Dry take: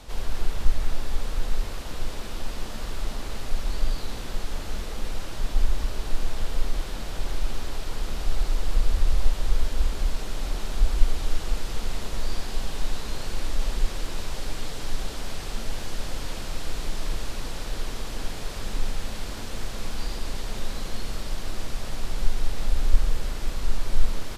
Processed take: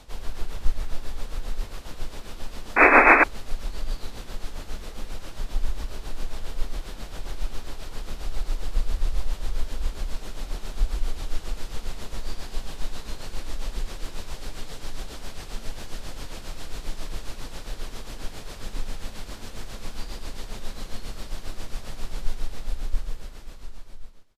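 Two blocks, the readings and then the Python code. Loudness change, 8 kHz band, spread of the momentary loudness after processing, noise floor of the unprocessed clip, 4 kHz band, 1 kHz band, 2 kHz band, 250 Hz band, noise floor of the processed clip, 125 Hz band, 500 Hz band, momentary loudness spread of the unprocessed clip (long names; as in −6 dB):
+5.0 dB, −4.5 dB, 9 LU, −33 dBFS, −4.5 dB, +11.0 dB, +14.0 dB, +2.5 dB, −41 dBFS, −4.5 dB, +6.0 dB, 7 LU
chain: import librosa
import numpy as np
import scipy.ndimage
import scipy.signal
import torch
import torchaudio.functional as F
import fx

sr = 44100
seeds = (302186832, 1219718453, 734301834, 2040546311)

y = fx.fade_out_tail(x, sr, length_s=2.21)
y = fx.spec_paint(y, sr, seeds[0], shape='noise', start_s=2.76, length_s=0.48, low_hz=230.0, high_hz=2600.0, level_db=-10.0)
y = y * (1.0 - 0.6 / 2.0 + 0.6 / 2.0 * np.cos(2.0 * np.pi * 7.4 * (np.arange(len(y)) / sr)))
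y = y * 10.0 ** (-1.5 / 20.0)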